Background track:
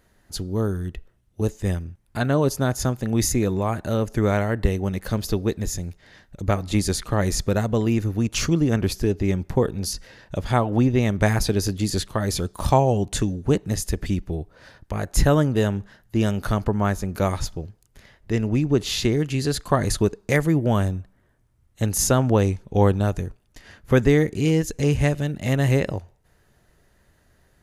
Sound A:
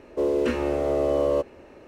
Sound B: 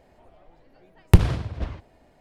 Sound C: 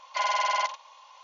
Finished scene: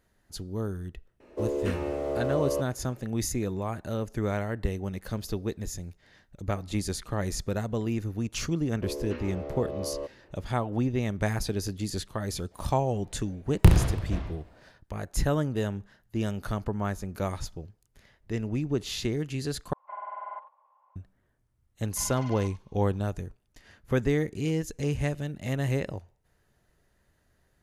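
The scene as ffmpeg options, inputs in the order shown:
ffmpeg -i bed.wav -i cue0.wav -i cue1.wav -i cue2.wav -filter_complex "[1:a]asplit=2[link_01][link_02];[3:a]asplit=2[link_03][link_04];[0:a]volume=-8.5dB[link_05];[link_02]lowpass=frequency=5000:width=0.5412,lowpass=frequency=5000:width=1.3066[link_06];[2:a]aecho=1:1:30|67.5|114.4|173|246.2|337.8:0.631|0.398|0.251|0.158|0.1|0.0631[link_07];[link_03]lowpass=frequency=1300:width=0.5412,lowpass=frequency=1300:width=1.3066[link_08];[link_05]asplit=2[link_09][link_10];[link_09]atrim=end=19.734[link_11];[link_08]atrim=end=1.23,asetpts=PTS-STARTPTS,volume=-11dB[link_12];[link_10]atrim=start=20.956[link_13];[link_01]atrim=end=1.87,asetpts=PTS-STARTPTS,volume=-6.5dB,afade=type=in:duration=0.004:curve=hsin,afade=type=out:start_time=1.866:duration=0.004:curve=hsin,adelay=1200[link_14];[link_06]atrim=end=1.87,asetpts=PTS-STARTPTS,volume=-12.5dB,afade=type=in:duration=0.004:curve=hsin,afade=type=out:start_time=1.866:duration=0.004:curve=hsin,adelay=8650[link_15];[link_07]atrim=end=2.2,asetpts=PTS-STARTPTS,volume=-4dB,afade=type=in:duration=0.004:curve=hsin,afade=type=out:start_time=2.196:duration=0.004:curve=hsin,adelay=12510[link_16];[link_04]atrim=end=1.23,asetpts=PTS-STARTPTS,volume=-17.5dB,afade=type=in:duration=0.004:curve=hsin,afade=type=out:start_time=1.226:duration=0.004:curve=hsin,adelay=21810[link_17];[link_11][link_12]acrossfade=duration=0.004:curve1=hsin:curve2=hsin[link_18];[link_18][link_13]acrossfade=duration=0.004:curve1=hsin:curve2=hsin[link_19];[link_19][link_14][link_15][link_16][link_17]amix=inputs=5:normalize=0" out.wav

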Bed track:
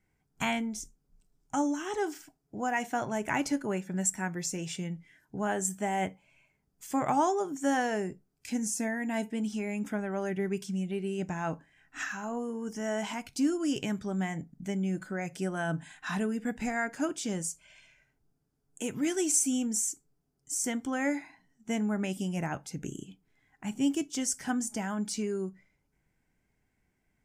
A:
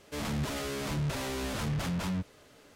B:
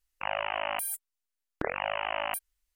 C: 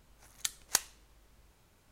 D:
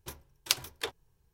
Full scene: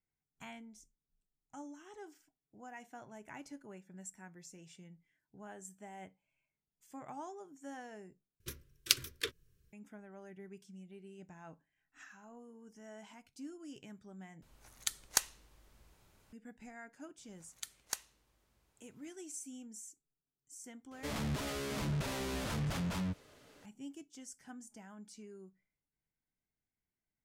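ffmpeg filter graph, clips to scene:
ffmpeg -i bed.wav -i cue0.wav -i cue1.wav -i cue2.wav -i cue3.wav -filter_complex "[3:a]asplit=2[link_01][link_02];[0:a]volume=-19.5dB[link_03];[4:a]asuperstop=centerf=790:order=4:qfactor=0.92[link_04];[link_02]highpass=57[link_05];[link_03]asplit=3[link_06][link_07][link_08];[link_06]atrim=end=8.404[link_09];[link_04]atrim=end=1.33,asetpts=PTS-STARTPTS,volume=-1dB[link_10];[link_07]atrim=start=9.726:end=14.424[link_11];[link_01]atrim=end=1.91,asetpts=PTS-STARTPTS,volume=-1.5dB[link_12];[link_08]atrim=start=16.326[link_13];[link_05]atrim=end=1.91,asetpts=PTS-STARTPTS,volume=-10dB,afade=type=in:duration=0.004:curve=hsin,afade=type=out:start_time=1.906:duration=0.004:curve=hsin,adelay=17180[link_14];[1:a]atrim=end=2.75,asetpts=PTS-STARTPTS,volume=-4dB,afade=type=in:duration=0.004:curve=hsin,afade=type=out:start_time=2.746:duration=0.004:curve=hsin,adelay=20910[link_15];[link_09][link_10]acrossfade=duration=0.004:curve1=hsin:curve2=hsin[link_16];[link_16][link_11]acrossfade=duration=0.004:curve1=hsin:curve2=hsin[link_17];[link_17][link_12]acrossfade=duration=0.004:curve1=hsin:curve2=hsin[link_18];[link_18][link_13]acrossfade=duration=0.004:curve1=hsin:curve2=hsin[link_19];[link_19][link_14][link_15]amix=inputs=3:normalize=0" out.wav

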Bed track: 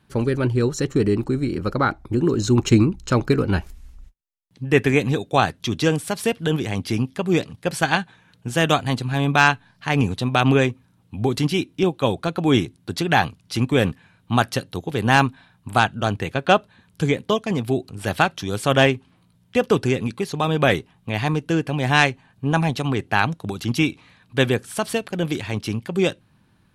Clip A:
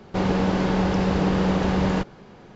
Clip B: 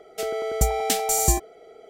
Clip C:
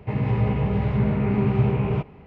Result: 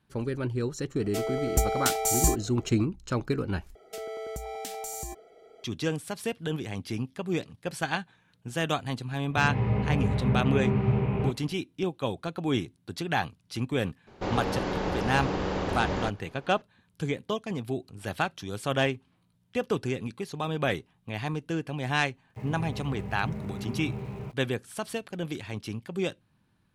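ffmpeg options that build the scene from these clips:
ffmpeg -i bed.wav -i cue0.wav -i cue1.wav -i cue2.wav -filter_complex "[2:a]asplit=2[link_01][link_02];[3:a]asplit=2[link_03][link_04];[0:a]volume=-10dB[link_05];[link_02]acompressor=threshold=-27dB:ratio=6:attack=3.2:release=140:knee=1:detection=peak[link_06];[1:a]equalizer=frequency=180:width_type=o:width=0.38:gain=-10.5[link_07];[link_04]aeval=exprs='val(0)*gte(abs(val(0)),0.0119)':channel_layout=same[link_08];[link_05]asplit=2[link_09][link_10];[link_09]atrim=end=3.754[link_11];[link_06]atrim=end=1.89,asetpts=PTS-STARTPTS,volume=-6.5dB[link_12];[link_10]atrim=start=5.636[link_13];[link_01]atrim=end=1.89,asetpts=PTS-STARTPTS,volume=-3.5dB,afade=type=in:duration=0.004:curve=hsin,afade=type=out:start_time=1.886:duration=0.004:curve=hsin,adelay=960[link_14];[link_03]atrim=end=2.26,asetpts=PTS-STARTPTS,volume=-4.5dB,afade=type=in:duration=0.004:curve=hsin,afade=type=out:start_time=2.256:duration=0.004:curve=hsin,adelay=9290[link_15];[link_07]atrim=end=2.55,asetpts=PTS-STARTPTS,volume=-5.5dB,afade=type=in:duration=0.004:curve=hsin,afade=type=out:start_time=2.546:duration=0.004:curve=hsin,adelay=14070[link_16];[link_08]atrim=end=2.26,asetpts=PTS-STARTPTS,volume=-14.5dB,afade=type=in:duration=0.05,afade=type=out:start_time=2.21:duration=0.05,adelay=22290[link_17];[link_11][link_12]acrossfade=duration=0.004:curve1=hsin:curve2=hsin[link_18];[link_18][link_13]acrossfade=duration=0.004:curve1=hsin:curve2=hsin[link_19];[link_19][link_14][link_15][link_16][link_17]amix=inputs=5:normalize=0" out.wav

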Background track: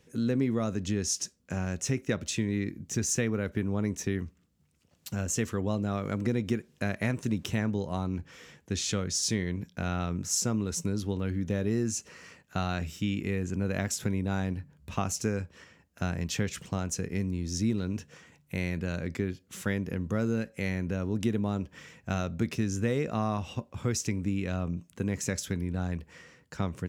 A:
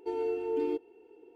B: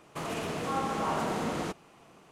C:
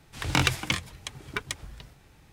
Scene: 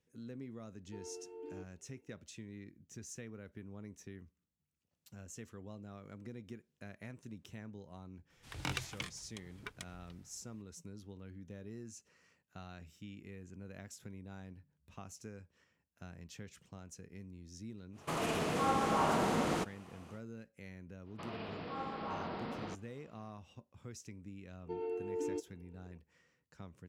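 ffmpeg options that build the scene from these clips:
ffmpeg -i bed.wav -i cue0.wav -i cue1.wav -i cue2.wav -filter_complex "[1:a]asplit=2[link_01][link_02];[2:a]asplit=2[link_03][link_04];[0:a]volume=-19.5dB[link_05];[link_04]aresample=11025,aresample=44100[link_06];[link_02]lowpass=3500[link_07];[link_01]atrim=end=1.35,asetpts=PTS-STARTPTS,volume=-17.5dB,afade=type=in:duration=0.004:curve=hsin,afade=type=out:start_time=1.346:duration=0.004:curve=hsin,adelay=860[link_08];[3:a]atrim=end=2.32,asetpts=PTS-STARTPTS,volume=-15dB,afade=type=in:duration=0.004:curve=hsin,afade=type=out:start_time=2.316:duration=0.004:curve=hsin,adelay=8300[link_09];[link_03]atrim=end=2.31,asetpts=PTS-STARTPTS,volume=-0.5dB,afade=type=in:duration=0.1,afade=type=out:start_time=2.21:duration=0.1,adelay=17920[link_10];[link_06]atrim=end=2.31,asetpts=PTS-STARTPTS,volume=-10.5dB,afade=type=in:duration=0.05,afade=type=out:start_time=2.26:duration=0.05,adelay=21030[link_11];[link_07]atrim=end=1.35,asetpts=PTS-STARTPTS,volume=-7.5dB,afade=type=in:duration=0.004:curve=hsin,afade=type=out:start_time=1.346:duration=0.004:curve=hsin,adelay=24630[link_12];[link_05][link_08][link_09][link_10][link_11][link_12]amix=inputs=6:normalize=0" out.wav

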